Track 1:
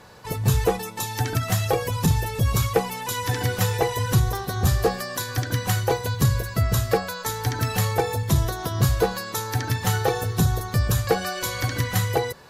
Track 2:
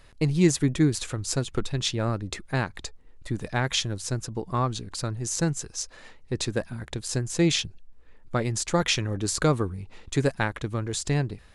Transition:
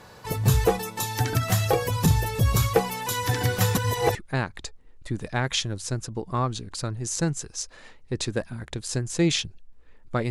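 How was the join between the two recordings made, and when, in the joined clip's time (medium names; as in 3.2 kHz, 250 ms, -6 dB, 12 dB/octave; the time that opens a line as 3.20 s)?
track 1
3.75–4.15 s: reverse
4.15 s: go over to track 2 from 2.35 s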